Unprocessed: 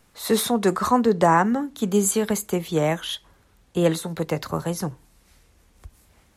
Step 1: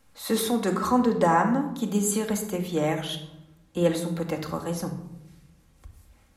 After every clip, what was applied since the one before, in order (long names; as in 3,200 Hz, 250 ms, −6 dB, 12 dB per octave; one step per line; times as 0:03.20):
rectangular room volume 2,800 cubic metres, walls furnished, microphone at 2.2 metres
level −5.5 dB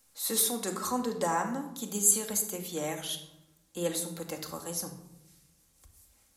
bass and treble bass −5 dB, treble +15 dB
level −8.5 dB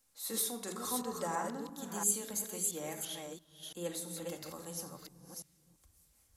delay that plays each chunk backwards 339 ms, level −4 dB
level −8 dB